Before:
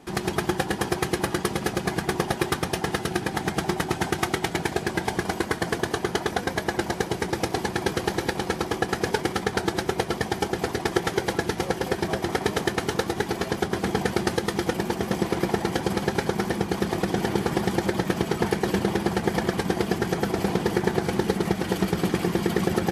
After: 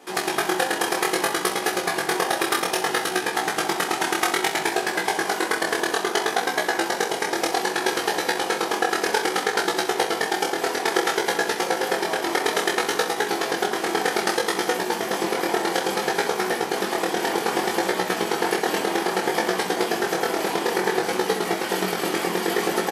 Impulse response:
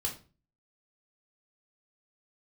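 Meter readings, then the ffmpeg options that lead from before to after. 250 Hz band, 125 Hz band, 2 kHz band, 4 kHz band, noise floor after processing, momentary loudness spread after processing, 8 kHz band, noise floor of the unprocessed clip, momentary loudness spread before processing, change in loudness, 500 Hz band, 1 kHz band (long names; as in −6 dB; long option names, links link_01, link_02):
−2.5 dB, −12.5 dB, +6.0 dB, +6.0 dB, −30 dBFS, 2 LU, +7.0 dB, −35 dBFS, 3 LU, +3.0 dB, +2.5 dB, +5.5 dB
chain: -af "highpass=440,highshelf=frequency=9500:gain=3.5,flanger=delay=16:depth=7.9:speed=0.61,aecho=1:1:27|65:0.473|0.282,volume=7.5dB"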